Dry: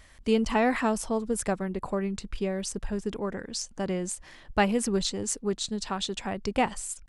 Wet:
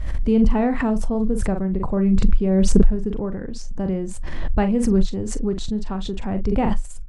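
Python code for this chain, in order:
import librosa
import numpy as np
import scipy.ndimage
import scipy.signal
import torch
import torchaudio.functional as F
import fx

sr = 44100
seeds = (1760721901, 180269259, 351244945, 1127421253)

y = fx.tilt_eq(x, sr, slope=-4.0)
y = fx.doubler(y, sr, ms=42.0, db=-10.5)
y = fx.pre_swell(y, sr, db_per_s=27.0)
y = y * 10.0 ** (-2.0 / 20.0)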